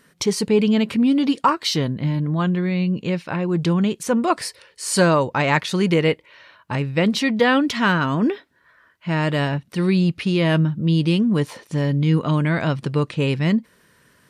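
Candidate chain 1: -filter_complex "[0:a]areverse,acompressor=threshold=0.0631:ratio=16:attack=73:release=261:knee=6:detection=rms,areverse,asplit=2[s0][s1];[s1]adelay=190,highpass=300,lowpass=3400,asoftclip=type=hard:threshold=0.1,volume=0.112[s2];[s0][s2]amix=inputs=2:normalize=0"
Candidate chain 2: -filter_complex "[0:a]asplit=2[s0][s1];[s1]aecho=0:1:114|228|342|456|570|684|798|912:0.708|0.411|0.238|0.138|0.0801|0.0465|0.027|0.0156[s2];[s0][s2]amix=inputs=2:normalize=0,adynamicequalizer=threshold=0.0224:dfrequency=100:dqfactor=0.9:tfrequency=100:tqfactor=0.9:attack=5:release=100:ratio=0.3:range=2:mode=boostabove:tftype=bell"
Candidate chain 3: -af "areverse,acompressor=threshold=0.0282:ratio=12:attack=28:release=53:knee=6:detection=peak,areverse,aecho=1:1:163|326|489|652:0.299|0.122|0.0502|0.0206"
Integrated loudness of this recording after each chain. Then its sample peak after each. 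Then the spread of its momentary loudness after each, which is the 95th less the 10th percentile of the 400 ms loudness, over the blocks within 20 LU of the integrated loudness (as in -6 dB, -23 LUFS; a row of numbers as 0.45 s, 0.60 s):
-27.5 LUFS, -17.0 LUFS, -31.0 LUFS; -10.0 dBFS, -2.5 dBFS, -15.5 dBFS; 4 LU, 8 LU, 5 LU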